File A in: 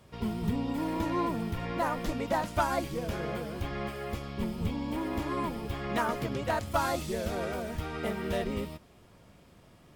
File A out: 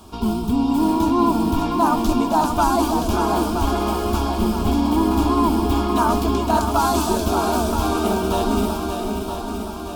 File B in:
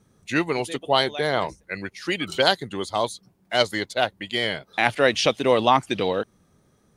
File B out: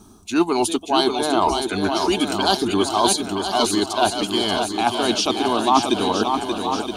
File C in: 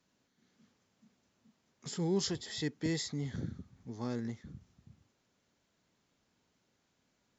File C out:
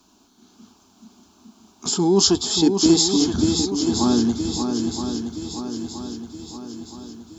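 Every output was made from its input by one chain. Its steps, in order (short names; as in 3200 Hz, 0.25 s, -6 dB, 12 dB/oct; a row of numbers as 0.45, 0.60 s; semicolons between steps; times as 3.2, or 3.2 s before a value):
reverse; compressor 6:1, threshold -31 dBFS; reverse; fixed phaser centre 520 Hz, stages 6; swung echo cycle 0.971 s, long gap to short 1.5:1, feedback 51%, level -6 dB; match loudness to -20 LUFS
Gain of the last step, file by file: +17.5, +18.0, +22.0 dB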